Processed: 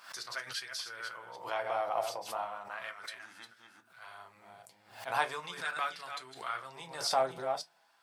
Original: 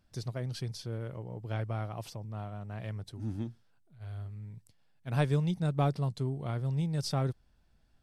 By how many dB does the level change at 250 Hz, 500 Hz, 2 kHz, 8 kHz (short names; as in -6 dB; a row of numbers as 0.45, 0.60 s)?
-19.5 dB, +1.5 dB, +9.0 dB, n/a